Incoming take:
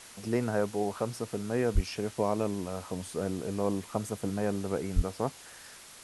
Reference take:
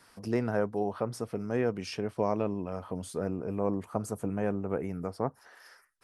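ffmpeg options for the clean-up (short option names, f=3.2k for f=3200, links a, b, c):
-filter_complex "[0:a]adeclick=t=4,asplit=3[a][b][c];[a]afade=t=out:st=1.74:d=0.02[d];[b]highpass=f=140:w=0.5412,highpass=f=140:w=1.3066,afade=t=in:st=1.74:d=0.02,afade=t=out:st=1.86:d=0.02[e];[c]afade=t=in:st=1.86:d=0.02[f];[d][e][f]amix=inputs=3:normalize=0,asplit=3[g][h][i];[g]afade=t=out:st=4.95:d=0.02[j];[h]highpass=f=140:w=0.5412,highpass=f=140:w=1.3066,afade=t=in:st=4.95:d=0.02,afade=t=out:st=5.07:d=0.02[k];[i]afade=t=in:st=5.07:d=0.02[l];[j][k][l]amix=inputs=3:normalize=0,afwtdn=0.004"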